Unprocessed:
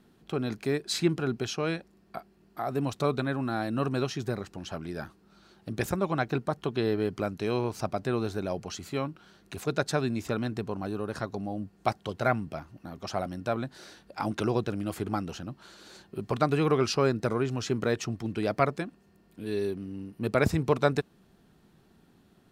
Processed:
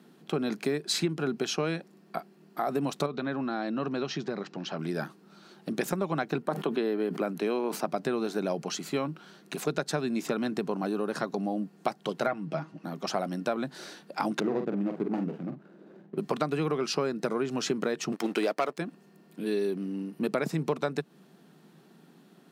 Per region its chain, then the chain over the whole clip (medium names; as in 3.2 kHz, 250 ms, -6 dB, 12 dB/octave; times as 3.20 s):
3.06–4.79 s: low-pass 5.6 kHz 24 dB/octave + compression 2:1, threshold -35 dBFS
6.42–7.87 s: high-pass 180 Hz 24 dB/octave + peaking EQ 5.8 kHz -7 dB 1.2 oct + decay stretcher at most 130 dB/s
12.26–12.84 s: distance through air 68 m + comb 6.3 ms, depth 50%
14.40–16.18 s: median filter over 41 samples + low-pass 1.3 kHz 6 dB/octave + doubling 45 ms -7.5 dB
18.12–18.78 s: high-pass 360 Hz + waveshaping leveller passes 2
whole clip: elliptic high-pass 150 Hz, stop band 40 dB; compression 10:1, threshold -30 dBFS; trim +5.5 dB